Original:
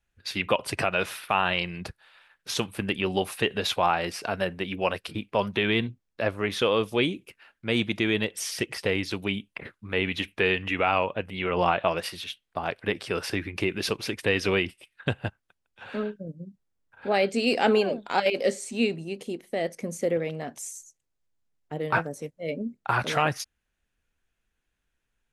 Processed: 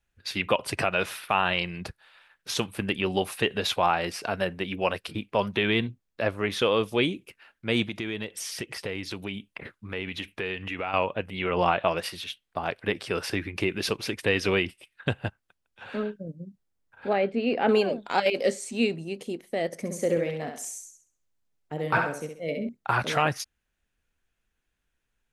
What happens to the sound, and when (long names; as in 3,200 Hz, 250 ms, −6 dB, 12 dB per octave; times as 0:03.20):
0:07.88–0:10.94: downward compressor 2 to 1, threshold −33 dBFS
0:17.13–0:17.69: high-frequency loss of the air 440 metres
0:19.66–0:22.69: feedback echo with a high-pass in the loop 66 ms, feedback 36%, high-pass 220 Hz, level −5 dB